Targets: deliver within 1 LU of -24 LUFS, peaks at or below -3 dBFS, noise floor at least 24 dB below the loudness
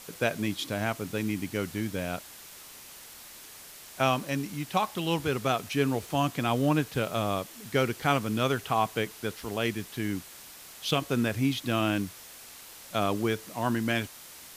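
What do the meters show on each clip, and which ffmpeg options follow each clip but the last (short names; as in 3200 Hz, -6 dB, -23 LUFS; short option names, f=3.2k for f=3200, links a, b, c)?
noise floor -48 dBFS; noise floor target -54 dBFS; loudness -29.5 LUFS; peak -11.5 dBFS; loudness target -24.0 LUFS
-> -af "afftdn=nr=6:nf=-48"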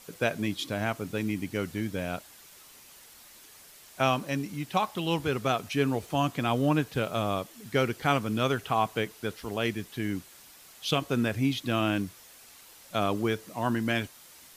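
noise floor -53 dBFS; noise floor target -54 dBFS
-> -af "afftdn=nr=6:nf=-53"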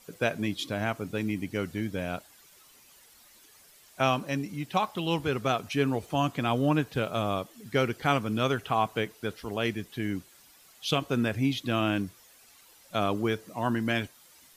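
noise floor -57 dBFS; loudness -29.5 LUFS; peak -11.5 dBFS; loudness target -24.0 LUFS
-> -af "volume=5.5dB"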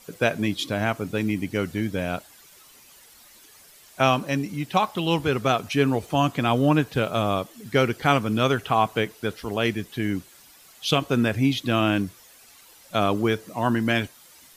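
loudness -24.0 LUFS; peak -6.0 dBFS; noise floor -52 dBFS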